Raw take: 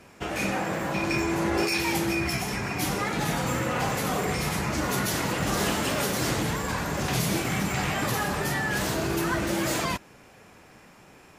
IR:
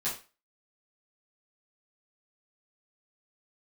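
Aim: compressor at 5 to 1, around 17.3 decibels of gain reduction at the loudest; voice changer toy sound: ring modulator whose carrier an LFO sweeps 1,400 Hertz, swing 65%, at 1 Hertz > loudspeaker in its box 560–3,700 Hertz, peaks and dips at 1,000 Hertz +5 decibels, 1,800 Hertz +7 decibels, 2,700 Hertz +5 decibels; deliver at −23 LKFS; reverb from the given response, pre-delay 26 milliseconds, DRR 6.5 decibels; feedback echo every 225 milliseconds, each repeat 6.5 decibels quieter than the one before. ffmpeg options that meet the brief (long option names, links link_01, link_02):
-filter_complex "[0:a]acompressor=threshold=-43dB:ratio=5,aecho=1:1:225|450|675|900|1125|1350:0.473|0.222|0.105|0.0491|0.0231|0.0109,asplit=2[link_01][link_02];[1:a]atrim=start_sample=2205,adelay=26[link_03];[link_02][link_03]afir=irnorm=-1:irlink=0,volume=-12dB[link_04];[link_01][link_04]amix=inputs=2:normalize=0,aeval=exprs='val(0)*sin(2*PI*1400*n/s+1400*0.65/1*sin(2*PI*1*n/s))':channel_layout=same,highpass=560,equalizer=frequency=1000:width_type=q:width=4:gain=5,equalizer=frequency=1800:width_type=q:width=4:gain=7,equalizer=frequency=2700:width_type=q:width=4:gain=5,lowpass=frequency=3700:width=0.5412,lowpass=frequency=3700:width=1.3066,volume=18dB"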